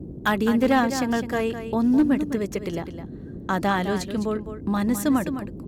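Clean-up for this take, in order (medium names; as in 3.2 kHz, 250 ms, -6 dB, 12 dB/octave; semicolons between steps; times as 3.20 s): clip repair -12.5 dBFS; noise print and reduce 30 dB; inverse comb 208 ms -10 dB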